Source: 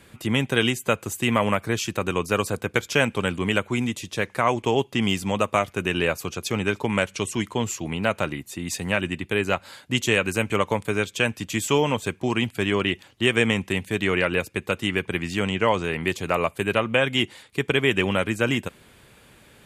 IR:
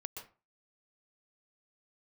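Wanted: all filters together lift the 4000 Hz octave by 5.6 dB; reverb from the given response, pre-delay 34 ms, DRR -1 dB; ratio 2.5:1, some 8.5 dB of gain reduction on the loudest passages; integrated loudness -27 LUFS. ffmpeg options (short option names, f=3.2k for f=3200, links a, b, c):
-filter_complex "[0:a]equalizer=f=4k:t=o:g=8.5,acompressor=threshold=-27dB:ratio=2.5,asplit=2[a][b];[1:a]atrim=start_sample=2205,adelay=34[c];[b][c]afir=irnorm=-1:irlink=0,volume=3.5dB[d];[a][d]amix=inputs=2:normalize=0,volume=-1.5dB"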